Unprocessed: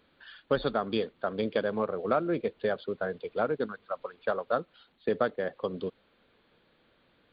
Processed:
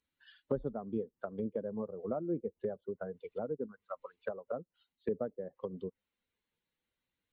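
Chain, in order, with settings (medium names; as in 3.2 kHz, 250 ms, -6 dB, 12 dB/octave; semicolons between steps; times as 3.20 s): expander on every frequency bin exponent 1.5; low-pass that closes with the level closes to 490 Hz, closed at -31 dBFS; trim -2.5 dB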